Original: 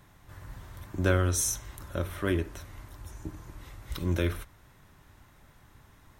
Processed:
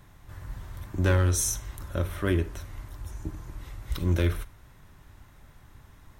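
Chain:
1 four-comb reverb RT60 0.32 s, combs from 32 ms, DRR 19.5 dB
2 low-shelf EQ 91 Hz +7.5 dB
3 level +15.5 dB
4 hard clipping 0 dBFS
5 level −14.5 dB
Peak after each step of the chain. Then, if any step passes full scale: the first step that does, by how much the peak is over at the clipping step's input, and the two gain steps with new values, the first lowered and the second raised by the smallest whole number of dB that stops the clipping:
−10.0, −9.5, +6.0, 0.0, −14.5 dBFS
step 3, 6.0 dB
step 3 +9.5 dB, step 5 −8.5 dB

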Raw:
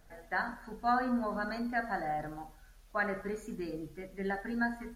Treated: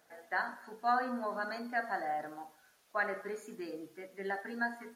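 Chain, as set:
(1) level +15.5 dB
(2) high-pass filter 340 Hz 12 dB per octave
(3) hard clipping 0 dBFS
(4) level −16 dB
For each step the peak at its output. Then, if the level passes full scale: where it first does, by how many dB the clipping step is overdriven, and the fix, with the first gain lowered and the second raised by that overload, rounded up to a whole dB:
−3.5, −2.5, −2.5, −18.5 dBFS
no step passes full scale

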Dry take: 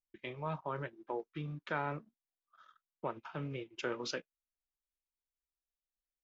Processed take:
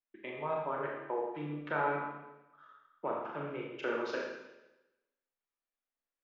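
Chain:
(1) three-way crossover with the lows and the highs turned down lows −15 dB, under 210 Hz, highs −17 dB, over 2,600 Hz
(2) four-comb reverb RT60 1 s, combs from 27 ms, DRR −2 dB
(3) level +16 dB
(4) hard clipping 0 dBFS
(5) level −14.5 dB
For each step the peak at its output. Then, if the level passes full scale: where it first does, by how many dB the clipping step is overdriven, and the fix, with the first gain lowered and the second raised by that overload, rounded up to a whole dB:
−23.5, −21.0, −5.0, −5.0, −19.5 dBFS
no step passes full scale

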